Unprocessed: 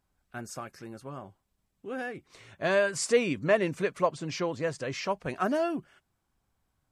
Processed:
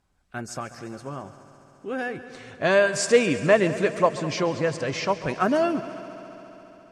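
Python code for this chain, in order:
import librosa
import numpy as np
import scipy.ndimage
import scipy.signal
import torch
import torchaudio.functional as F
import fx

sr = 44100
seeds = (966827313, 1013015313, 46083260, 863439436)

p1 = scipy.signal.sosfilt(scipy.signal.butter(2, 9000.0, 'lowpass', fs=sr, output='sos'), x)
p2 = p1 + fx.echo_heads(p1, sr, ms=69, heads='second and third', feedback_pct=74, wet_db=-17, dry=0)
y = F.gain(torch.from_numpy(p2), 6.0).numpy()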